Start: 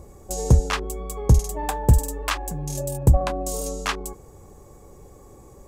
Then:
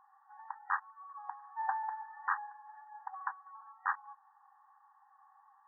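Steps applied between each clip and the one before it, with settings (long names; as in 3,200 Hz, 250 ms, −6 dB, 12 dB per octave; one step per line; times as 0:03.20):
brick-wall band-pass 760–1,900 Hz
level −4.5 dB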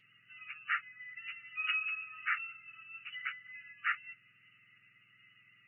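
frequency axis turned over on the octave scale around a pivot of 1,500 Hz
level +4.5 dB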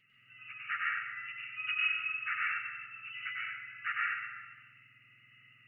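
convolution reverb RT60 1.4 s, pre-delay 98 ms, DRR −5.5 dB
level −3.5 dB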